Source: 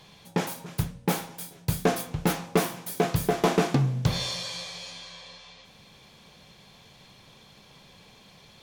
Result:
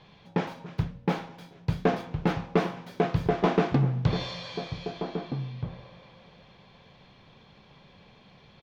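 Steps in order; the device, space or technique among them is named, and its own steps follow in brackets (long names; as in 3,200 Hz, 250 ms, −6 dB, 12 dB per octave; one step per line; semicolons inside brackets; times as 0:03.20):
shout across a valley (high-frequency loss of the air 240 metres; slap from a distant wall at 270 metres, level −9 dB)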